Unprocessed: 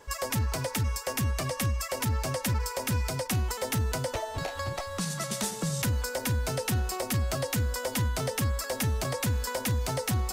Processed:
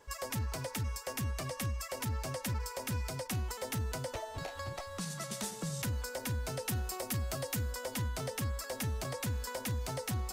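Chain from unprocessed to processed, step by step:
0:06.68–0:07.72: high-shelf EQ 9,200 Hz +6 dB
level −7.5 dB

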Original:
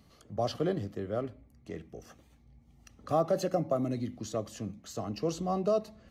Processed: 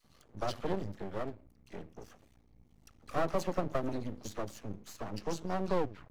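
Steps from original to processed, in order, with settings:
turntable brake at the end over 0.45 s
all-pass dispersion lows, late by 45 ms, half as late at 1,100 Hz
half-wave rectification

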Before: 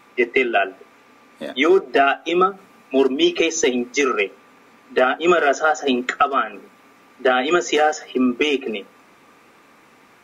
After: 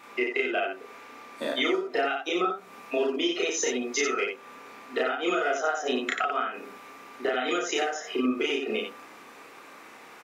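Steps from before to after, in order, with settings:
bass and treble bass −10 dB, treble 0 dB
downward compressor 6 to 1, threshold −28 dBFS, peak gain reduction 15.5 dB
loudspeakers that aren't time-aligned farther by 11 metres 0 dB, 31 metres −4 dB

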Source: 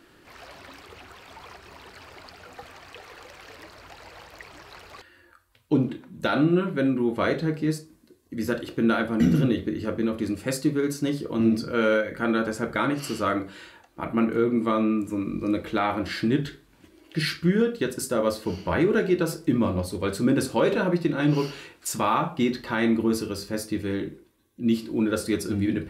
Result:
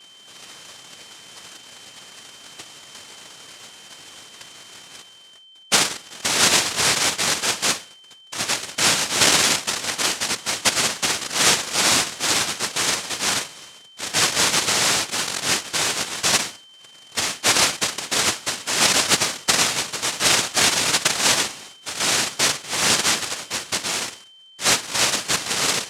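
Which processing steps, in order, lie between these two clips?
cochlear-implant simulation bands 1
steady tone 3,100 Hz −49 dBFS
level +3 dB

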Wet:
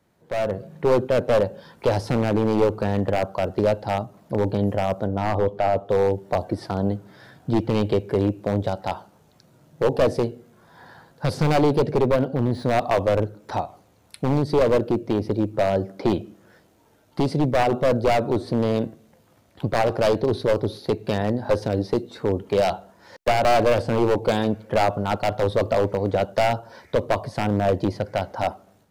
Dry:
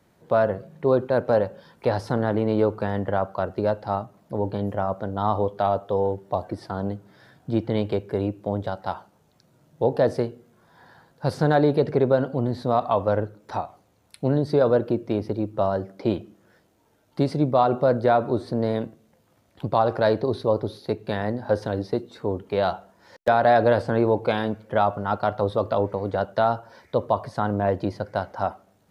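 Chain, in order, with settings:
wavefolder on the positive side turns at −16 dBFS
dynamic equaliser 1,400 Hz, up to −7 dB, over −40 dBFS, Q 1
automatic gain control gain up to 10 dB
0:05.07–0:05.90: high-shelf EQ 3,200 Hz −12 dB
0:12.02–0:12.65: linearly interpolated sample-rate reduction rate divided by 3×
level −4.5 dB

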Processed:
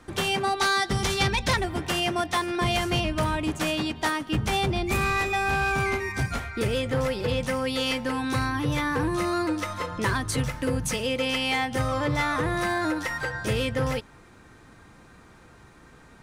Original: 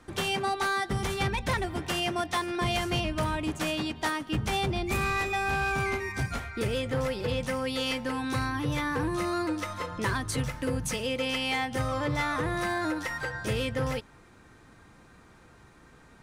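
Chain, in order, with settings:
0:00.55–0:01.56: dynamic equaliser 5,000 Hz, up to +8 dB, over −49 dBFS, Q 0.84
level +3.5 dB

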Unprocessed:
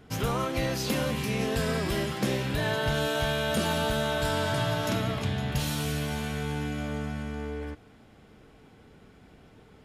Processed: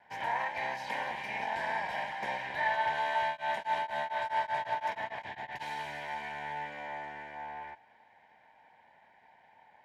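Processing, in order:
lower of the sound and its delayed copy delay 1.3 ms
pair of resonant band-passes 1,300 Hz, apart 1 octave
0:03.23–0:05.61: tremolo along a rectified sine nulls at 3.4 Hz → 9 Hz
level +7.5 dB

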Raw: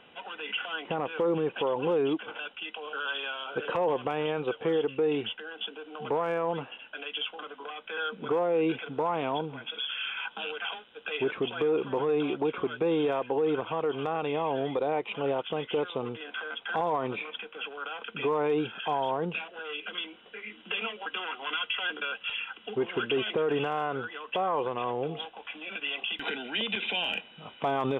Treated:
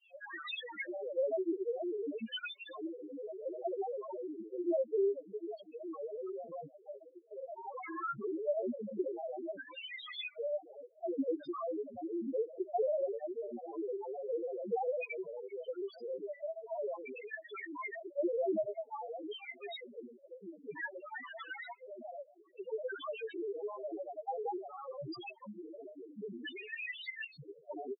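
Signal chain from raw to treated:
downward compressor 16 to 1, threshold −34 dBFS, peak gain reduction 12 dB
auto-filter low-pass square 0.53 Hz 550–2,300 Hz
granular cloud, grains 20 per second, pitch spread up and down by 7 semitones
spectral peaks only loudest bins 2
level +2.5 dB

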